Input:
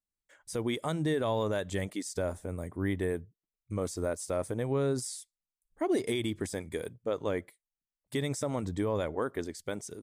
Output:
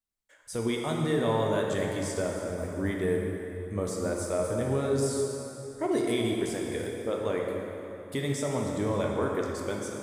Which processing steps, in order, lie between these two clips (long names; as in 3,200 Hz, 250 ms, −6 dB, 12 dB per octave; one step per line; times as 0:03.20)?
dense smooth reverb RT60 3.3 s, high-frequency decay 0.7×, DRR −1 dB